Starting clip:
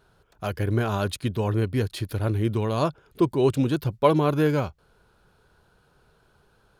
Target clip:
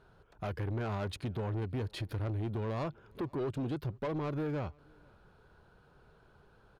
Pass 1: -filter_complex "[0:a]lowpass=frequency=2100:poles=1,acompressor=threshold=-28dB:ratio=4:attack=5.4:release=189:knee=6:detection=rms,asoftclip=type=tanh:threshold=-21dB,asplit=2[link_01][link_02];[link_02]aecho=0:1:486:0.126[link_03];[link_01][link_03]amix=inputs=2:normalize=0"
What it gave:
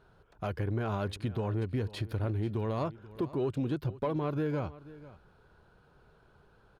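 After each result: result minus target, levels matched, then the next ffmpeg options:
soft clipping: distortion −13 dB; echo-to-direct +11 dB
-filter_complex "[0:a]lowpass=frequency=2100:poles=1,acompressor=threshold=-28dB:ratio=4:attack=5.4:release=189:knee=6:detection=rms,asoftclip=type=tanh:threshold=-30.5dB,asplit=2[link_01][link_02];[link_02]aecho=0:1:486:0.126[link_03];[link_01][link_03]amix=inputs=2:normalize=0"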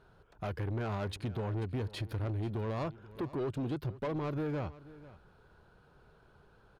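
echo-to-direct +11 dB
-filter_complex "[0:a]lowpass=frequency=2100:poles=1,acompressor=threshold=-28dB:ratio=4:attack=5.4:release=189:knee=6:detection=rms,asoftclip=type=tanh:threshold=-30.5dB,asplit=2[link_01][link_02];[link_02]aecho=0:1:486:0.0355[link_03];[link_01][link_03]amix=inputs=2:normalize=0"

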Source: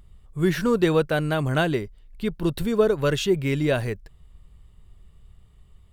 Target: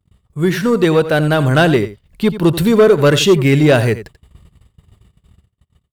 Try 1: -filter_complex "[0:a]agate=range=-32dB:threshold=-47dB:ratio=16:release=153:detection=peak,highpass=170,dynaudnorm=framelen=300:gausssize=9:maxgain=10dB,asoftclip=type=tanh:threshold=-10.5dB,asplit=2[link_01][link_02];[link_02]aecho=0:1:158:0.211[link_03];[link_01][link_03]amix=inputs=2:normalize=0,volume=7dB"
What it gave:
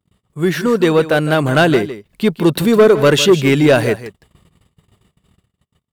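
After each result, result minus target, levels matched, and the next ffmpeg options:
echo 71 ms late; 125 Hz band −3.5 dB
-filter_complex "[0:a]agate=range=-32dB:threshold=-47dB:ratio=16:release=153:detection=peak,highpass=170,dynaudnorm=framelen=300:gausssize=9:maxgain=10dB,asoftclip=type=tanh:threshold=-10.5dB,asplit=2[link_01][link_02];[link_02]aecho=0:1:87:0.211[link_03];[link_01][link_03]amix=inputs=2:normalize=0,volume=7dB"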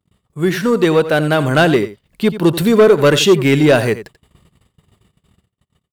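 125 Hz band −3.0 dB
-filter_complex "[0:a]agate=range=-32dB:threshold=-47dB:ratio=16:release=153:detection=peak,highpass=82,dynaudnorm=framelen=300:gausssize=9:maxgain=10dB,asoftclip=type=tanh:threshold=-10.5dB,asplit=2[link_01][link_02];[link_02]aecho=0:1:87:0.211[link_03];[link_01][link_03]amix=inputs=2:normalize=0,volume=7dB"

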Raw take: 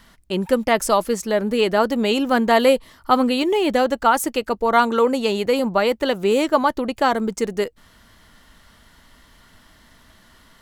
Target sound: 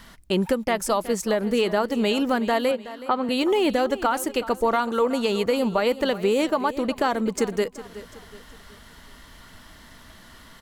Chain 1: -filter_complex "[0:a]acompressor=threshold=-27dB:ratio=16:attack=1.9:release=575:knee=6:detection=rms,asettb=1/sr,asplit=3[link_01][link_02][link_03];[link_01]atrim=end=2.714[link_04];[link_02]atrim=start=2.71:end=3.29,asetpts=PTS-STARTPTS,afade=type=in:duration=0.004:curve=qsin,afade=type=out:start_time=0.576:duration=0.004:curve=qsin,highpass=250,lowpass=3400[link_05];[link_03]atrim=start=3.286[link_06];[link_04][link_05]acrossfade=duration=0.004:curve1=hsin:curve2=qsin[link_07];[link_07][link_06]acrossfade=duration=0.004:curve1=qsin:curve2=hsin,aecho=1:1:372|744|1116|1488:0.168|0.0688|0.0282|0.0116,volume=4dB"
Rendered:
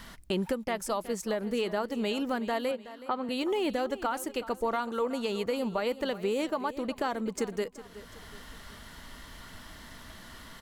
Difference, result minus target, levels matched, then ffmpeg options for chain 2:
downward compressor: peak gain reduction +8.5 dB
-filter_complex "[0:a]acompressor=threshold=-18dB:ratio=16:attack=1.9:release=575:knee=6:detection=rms,asettb=1/sr,asplit=3[link_01][link_02][link_03];[link_01]atrim=end=2.714[link_04];[link_02]atrim=start=2.71:end=3.29,asetpts=PTS-STARTPTS,afade=type=in:duration=0.004:curve=qsin,afade=type=out:start_time=0.576:duration=0.004:curve=qsin,highpass=250,lowpass=3400[link_05];[link_03]atrim=start=3.286[link_06];[link_04][link_05]acrossfade=duration=0.004:curve1=hsin:curve2=qsin[link_07];[link_07][link_06]acrossfade=duration=0.004:curve1=qsin:curve2=hsin,aecho=1:1:372|744|1116|1488:0.168|0.0688|0.0282|0.0116,volume=4dB"

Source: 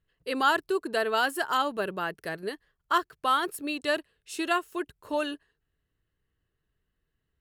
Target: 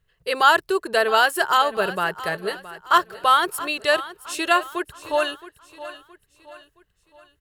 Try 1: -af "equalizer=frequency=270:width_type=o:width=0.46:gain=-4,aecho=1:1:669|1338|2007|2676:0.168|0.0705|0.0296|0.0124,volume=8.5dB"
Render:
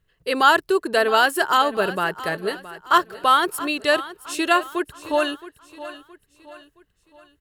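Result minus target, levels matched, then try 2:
250 Hz band +5.0 dB
-af "equalizer=frequency=270:width_type=o:width=0.46:gain=-16,aecho=1:1:669|1338|2007|2676:0.168|0.0705|0.0296|0.0124,volume=8.5dB"

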